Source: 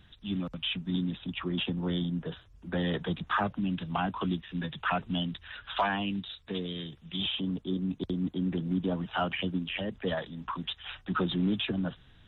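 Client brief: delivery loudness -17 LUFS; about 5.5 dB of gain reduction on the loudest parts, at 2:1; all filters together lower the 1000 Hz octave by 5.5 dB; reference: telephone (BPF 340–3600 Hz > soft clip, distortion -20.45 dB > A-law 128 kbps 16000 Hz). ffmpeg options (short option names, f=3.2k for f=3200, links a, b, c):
-af "equalizer=f=1k:t=o:g=-7.5,acompressor=threshold=-36dB:ratio=2,highpass=340,lowpass=3.6k,asoftclip=threshold=-30dB,volume=26dB" -ar 16000 -c:a pcm_alaw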